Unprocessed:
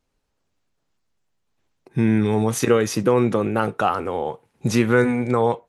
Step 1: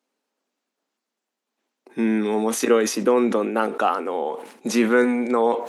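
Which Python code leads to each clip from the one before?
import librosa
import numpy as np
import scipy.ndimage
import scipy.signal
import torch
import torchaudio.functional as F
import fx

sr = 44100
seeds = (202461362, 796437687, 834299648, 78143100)

y = scipy.signal.sosfilt(scipy.signal.cheby1(4, 1.0, 230.0, 'highpass', fs=sr, output='sos'), x)
y = fx.sustainer(y, sr, db_per_s=90.0)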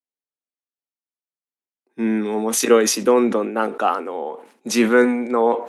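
y = fx.band_widen(x, sr, depth_pct=70)
y = F.gain(torch.from_numpy(y), 2.0).numpy()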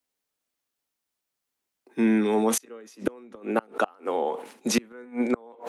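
y = fx.gate_flip(x, sr, shuts_db=-10.0, range_db=-32)
y = fx.band_squash(y, sr, depth_pct=40)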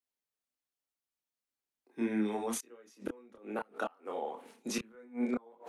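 y = fx.chorus_voices(x, sr, voices=4, hz=0.69, base_ms=27, depth_ms=2.3, mix_pct=45)
y = F.gain(torch.from_numpy(y), -8.0).numpy()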